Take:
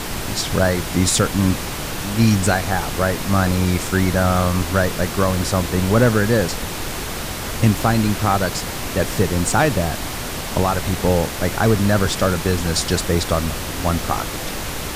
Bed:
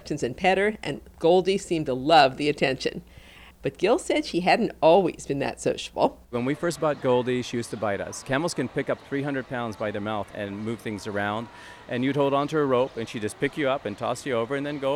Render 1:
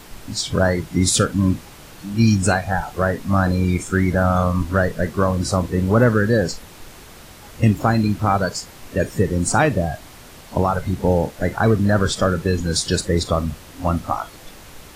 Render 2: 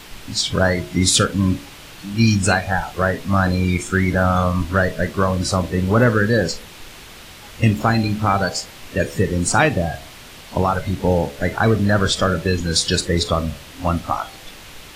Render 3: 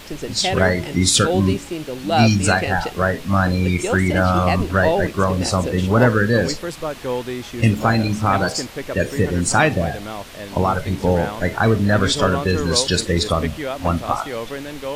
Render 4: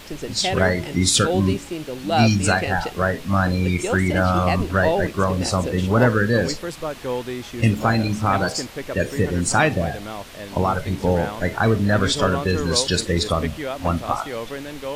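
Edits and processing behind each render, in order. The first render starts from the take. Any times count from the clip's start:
noise print and reduce 15 dB
bell 3000 Hz +7 dB 1.6 oct; de-hum 70.99 Hz, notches 11
add bed -2 dB
gain -2 dB

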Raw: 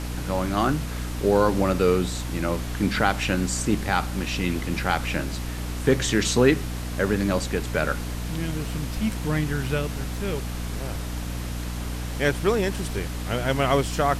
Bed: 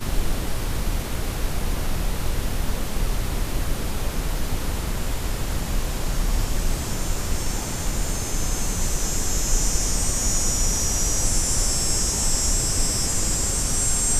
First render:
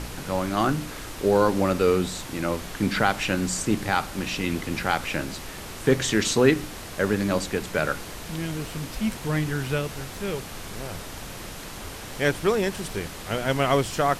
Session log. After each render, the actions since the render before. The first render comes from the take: de-hum 60 Hz, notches 5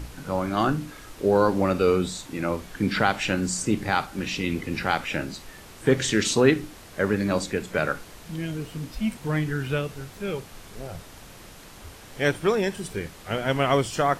noise print and reduce 8 dB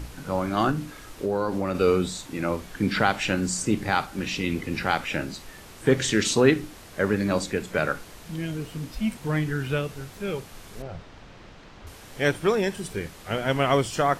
0.71–1.75 compressor 2.5:1, threshold -23 dBFS; 10.82–11.87 air absorption 160 m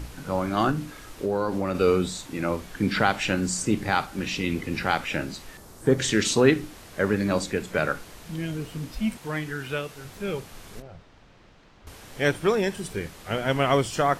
5.57–5.99 bell 2600 Hz -11.5 dB 1.4 oct; 9.18–10.05 low shelf 300 Hz -10 dB; 10.8–11.87 gain -7.5 dB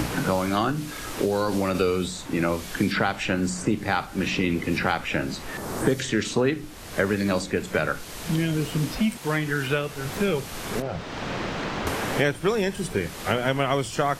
three-band squash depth 100%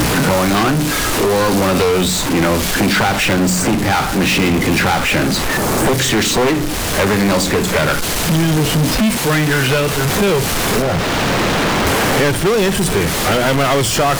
one-sided fold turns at -19 dBFS; power-law curve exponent 0.35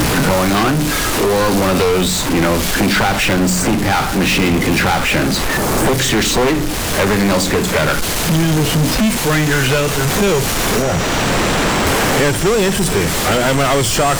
add bed -6 dB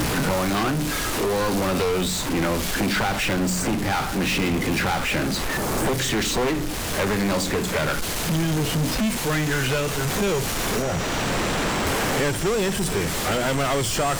gain -8.5 dB

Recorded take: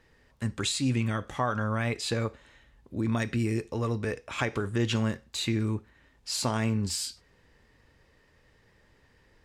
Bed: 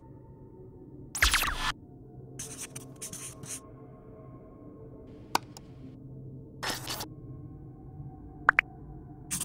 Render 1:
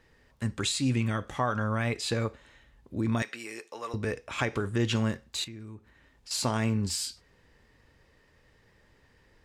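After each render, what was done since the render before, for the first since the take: 3.22–3.94 HPF 710 Hz; 5.44–6.31 compressor 2.5:1, threshold -48 dBFS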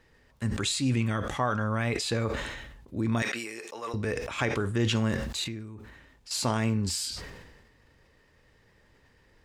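sustainer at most 42 dB/s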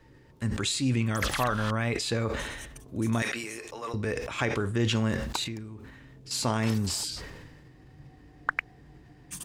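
add bed -7 dB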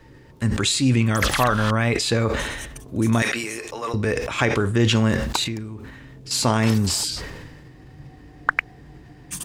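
gain +8 dB

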